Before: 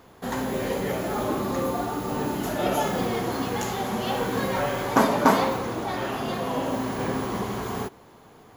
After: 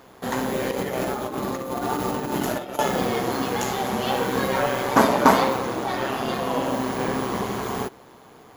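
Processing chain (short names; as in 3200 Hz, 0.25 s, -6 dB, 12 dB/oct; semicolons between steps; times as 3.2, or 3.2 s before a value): low shelf 110 Hz -9 dB; 0.71–2.79 negative-ratio compressor -30 dBFS, ratio -0.5; AM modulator 130 Hz, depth 30%; gain +5.5 dB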